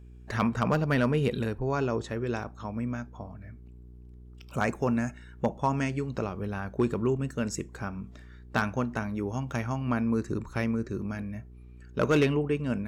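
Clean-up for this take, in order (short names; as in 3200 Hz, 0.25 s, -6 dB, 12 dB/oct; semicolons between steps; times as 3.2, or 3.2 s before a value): clip repair -16.5 dBFS; de-hum 60.7 Hz, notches 7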